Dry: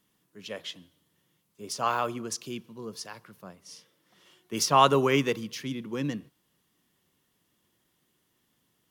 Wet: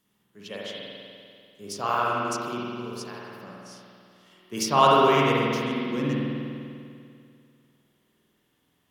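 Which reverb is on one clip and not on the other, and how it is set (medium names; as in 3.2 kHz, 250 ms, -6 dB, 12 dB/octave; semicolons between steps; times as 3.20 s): spring tank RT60 2.4 s, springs 49 ms, chirp 40 ms, DRR -5 dB; trim -2 dB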